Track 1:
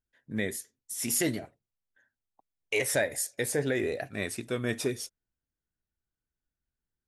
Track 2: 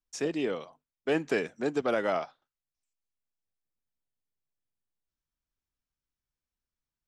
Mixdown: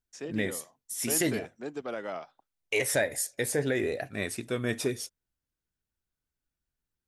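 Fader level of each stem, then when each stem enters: +0.5, -8.0 dB; 0.00, 0.00 s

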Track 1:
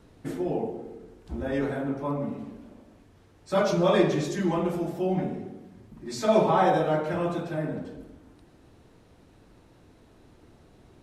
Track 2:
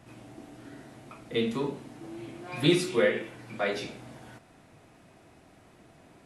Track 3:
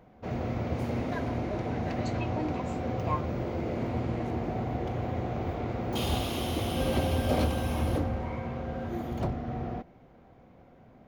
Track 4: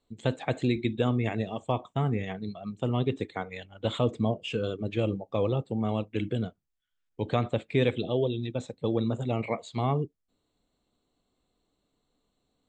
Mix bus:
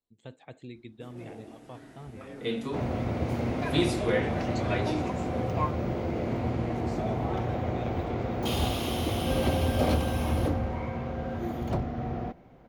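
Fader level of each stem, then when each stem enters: -17.0, -3.5, +1.5, -17.5 dB; 0.75, 1.10, 2.50, 0.00 s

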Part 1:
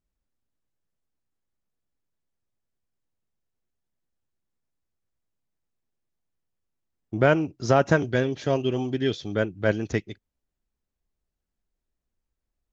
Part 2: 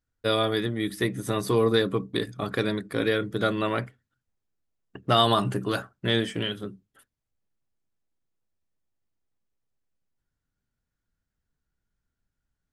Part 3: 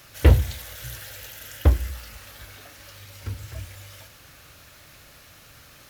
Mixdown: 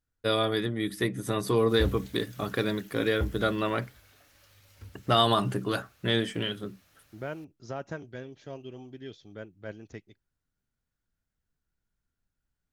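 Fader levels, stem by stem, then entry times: -17.5, -2.0, -15.0 dB; 0.00, 0.00, 1.55 s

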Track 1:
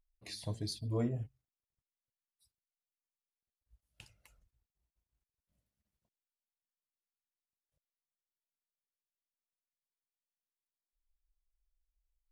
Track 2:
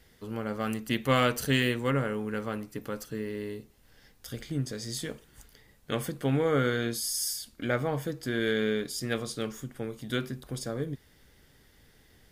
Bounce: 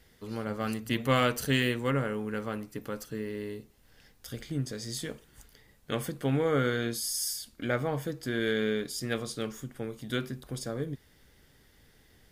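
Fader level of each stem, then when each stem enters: -10.5, -1.0 dB; 0.00, 0.00 s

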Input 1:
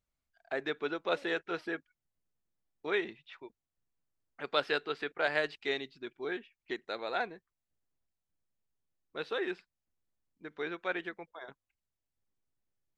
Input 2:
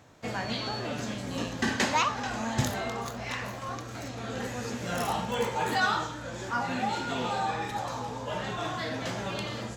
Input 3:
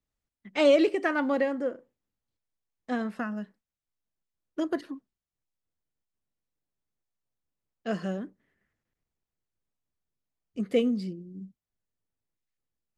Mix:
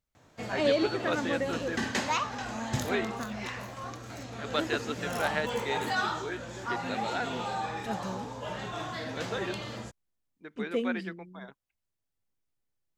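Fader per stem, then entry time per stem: -0.5, -3.5, -6.0 dB; 0.00, 0.15, 0.00 s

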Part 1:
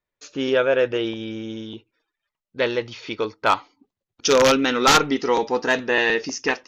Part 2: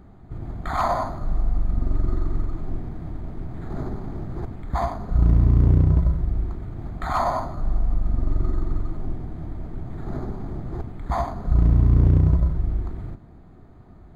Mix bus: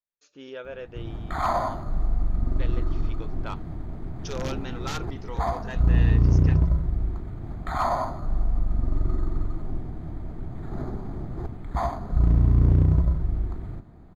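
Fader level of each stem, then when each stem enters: -19.0, -2.0 dB; 0.00, 0.65 s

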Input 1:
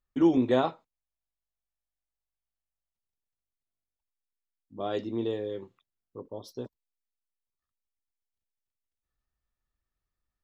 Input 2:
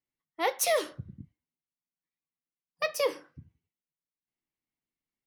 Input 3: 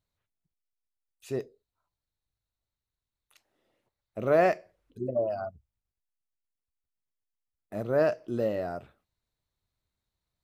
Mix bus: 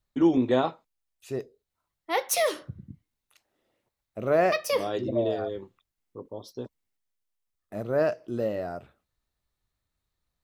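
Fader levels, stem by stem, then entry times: +1.0, +1.5, 0.0 dB; 0.00, 1.70, 0.00 s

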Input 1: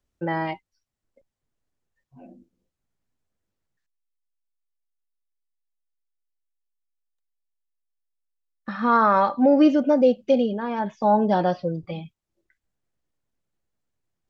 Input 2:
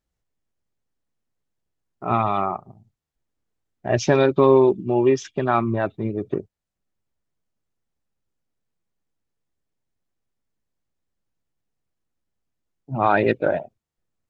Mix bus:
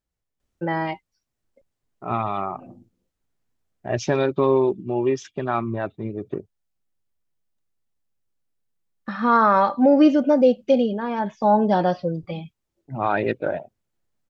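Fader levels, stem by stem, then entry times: +1.5, -4.0 dB; 0.40, 0.00 s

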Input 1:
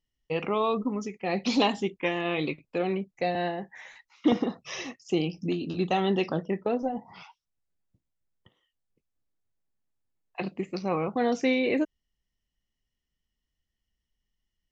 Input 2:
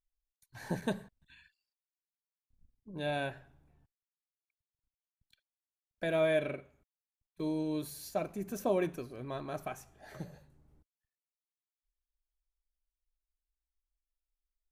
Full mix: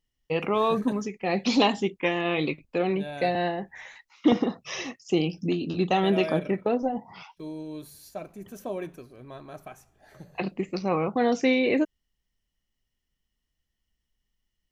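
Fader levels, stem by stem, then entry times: +2.5, -3.0 dB; 0.00, 0.00 s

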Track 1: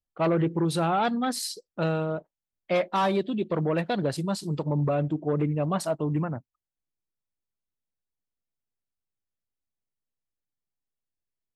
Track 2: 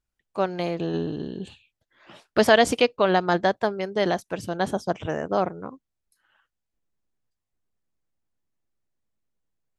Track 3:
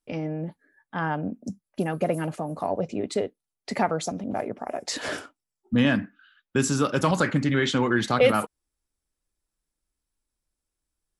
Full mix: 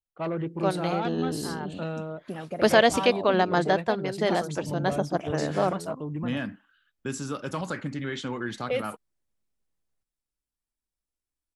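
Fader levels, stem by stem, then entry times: -6.5, -2.0, -9.5 dB; 0.00, 0.25, 0.50 s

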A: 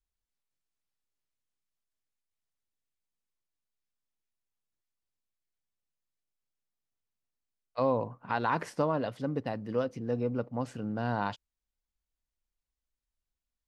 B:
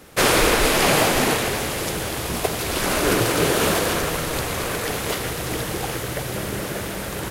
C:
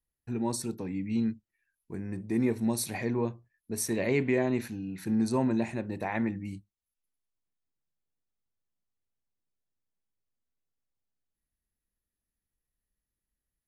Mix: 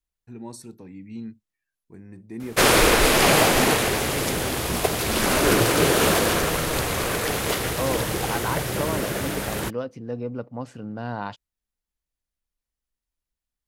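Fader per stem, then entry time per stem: +0.5, +0.5, -7.0 dB; 0.00, 2.40, 0.00 s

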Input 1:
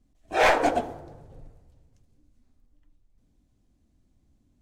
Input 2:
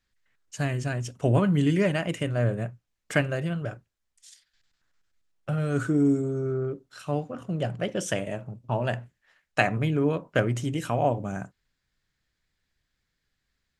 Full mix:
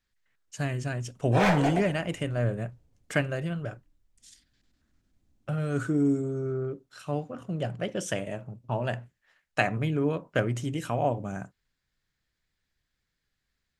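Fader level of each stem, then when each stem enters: -5.5, -2.5 dB; 1.00, 0.00 s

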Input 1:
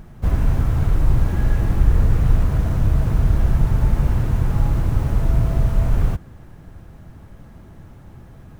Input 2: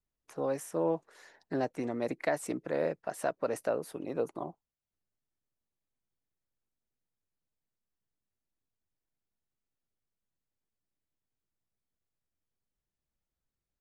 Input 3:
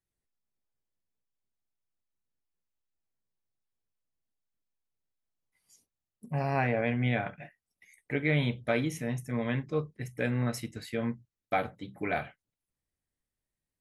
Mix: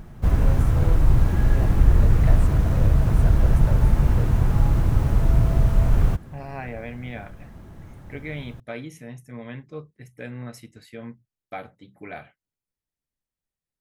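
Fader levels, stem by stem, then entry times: -0.5, -5.5, -6.0 dB; 0.00, 0.00, 0.00 s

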